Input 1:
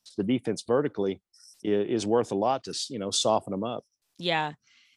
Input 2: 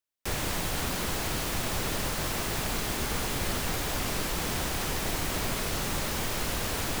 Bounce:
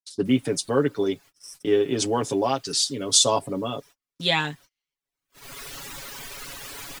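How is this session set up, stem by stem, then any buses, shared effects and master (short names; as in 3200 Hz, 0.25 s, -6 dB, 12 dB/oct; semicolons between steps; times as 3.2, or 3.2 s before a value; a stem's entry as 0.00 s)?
+2.0 dB, 0.00 s, no send, high shelf 4400 Hz +9.5 dB
-3.0 dB, 0.00 s, no send, reverb removal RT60 1.7 s; low shelf 420 Hz -11 dB; auto duck -21 dB, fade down 0.20 s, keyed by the first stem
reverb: off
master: gate -46 dBFS, range -36 dB; bell 710 Hz -4.5 dB 0.64 oct; comb 7.2 ms, depth 77%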